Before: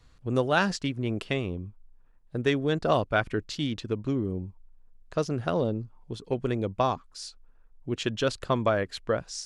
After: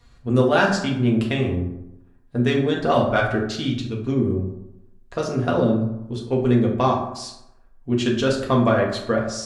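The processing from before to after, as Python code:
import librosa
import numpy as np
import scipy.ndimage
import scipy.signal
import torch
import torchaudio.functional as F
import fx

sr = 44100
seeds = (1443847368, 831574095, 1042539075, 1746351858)

p1 = fx.spec_box(x, sr, start_s=3.68, length_s=0.37, low_hz=210.0, high_hz=2200.0, gain_db=-7)
p2 = np.clip(10.0 ** (17.5 / 20.0) * p1, -1.0, 1.0) / 10.0 ** (17.5 / 20.0)
p3 = p1 + (p2 * 10.0 ** (-10.5 / 20.0))
y = fx.rev_fdn(p3, sr, rt60_s=0.86, lf_ratio=1.05, hf_ratio=0.5, size_ms=25.0, drr_db=-2.0)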